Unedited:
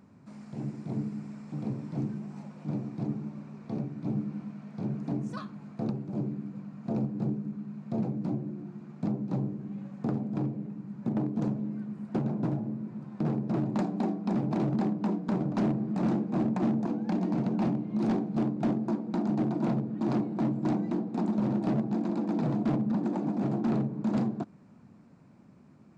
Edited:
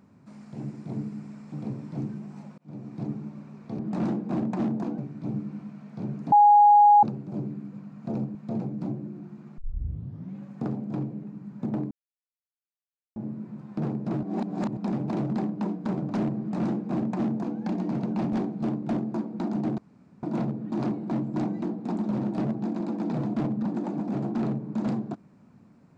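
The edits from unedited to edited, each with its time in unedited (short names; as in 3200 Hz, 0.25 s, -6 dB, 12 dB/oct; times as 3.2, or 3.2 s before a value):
2.58–2.98 fade in
5.13–5.84 bleep 827 Hz -12 dBFS
7.16–7.78 cut
9.01 tape start 0.77 s
11.34–12.59 mute
13.66–14.2 reverse
15.82–17.01 copy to 3.79
17.76–18.07 cut
19.52 insert room tone 0.45 s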